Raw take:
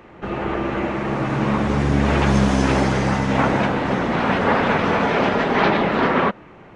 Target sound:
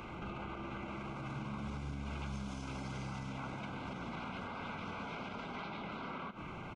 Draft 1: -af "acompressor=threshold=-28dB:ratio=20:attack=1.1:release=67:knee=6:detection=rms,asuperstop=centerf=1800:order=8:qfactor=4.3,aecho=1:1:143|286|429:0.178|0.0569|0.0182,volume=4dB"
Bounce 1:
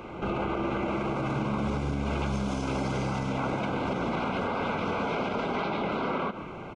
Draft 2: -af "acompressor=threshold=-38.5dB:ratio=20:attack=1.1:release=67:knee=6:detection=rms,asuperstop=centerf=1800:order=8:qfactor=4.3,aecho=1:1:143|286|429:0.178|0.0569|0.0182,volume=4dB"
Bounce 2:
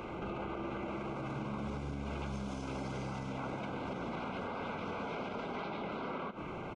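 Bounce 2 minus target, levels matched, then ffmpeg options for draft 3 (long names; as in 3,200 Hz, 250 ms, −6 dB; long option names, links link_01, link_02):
500 Hz band +4.5 dB
-af "acompressor=threshold=-38.5dB:ratio=20:attack=1.1:release=67:knee=6:detection=rms,asuperstop=centerf=1800:order=8:qfactor=4.3,equalizer=frequency=470:width=0.93:gain=-9,aecho=1:1:143|286|429:0.178|0.0569|0.0182,volume=4dB"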